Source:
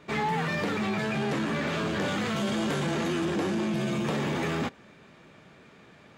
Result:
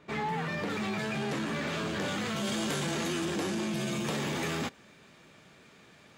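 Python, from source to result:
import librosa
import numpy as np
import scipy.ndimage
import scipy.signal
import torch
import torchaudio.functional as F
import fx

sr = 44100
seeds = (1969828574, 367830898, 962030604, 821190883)

y = fx.high_shelf(x, sr, hz=3600.0, db=fx.steps((0.0, -2.0), (0.69, 6.0), (2.43, 11.5)))
y = F.gain(torch.from_numpy(y), -4.5).numpy()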